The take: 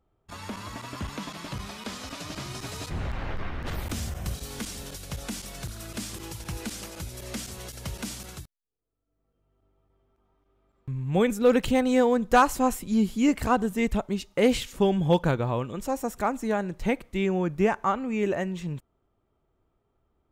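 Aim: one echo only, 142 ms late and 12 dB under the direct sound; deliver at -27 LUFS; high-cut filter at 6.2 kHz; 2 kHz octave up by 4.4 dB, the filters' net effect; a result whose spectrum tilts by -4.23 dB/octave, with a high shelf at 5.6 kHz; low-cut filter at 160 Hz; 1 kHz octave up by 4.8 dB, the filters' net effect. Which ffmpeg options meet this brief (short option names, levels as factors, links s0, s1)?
-af "highpass=160,lowpass=6200,equalizer=f=1000:t=o:g=5.5,equalizer=f=2000:t=o:g=4.5,highshelf=f=5600:g=-6.5,aecho=1:1:142:0.251,volume=0.794"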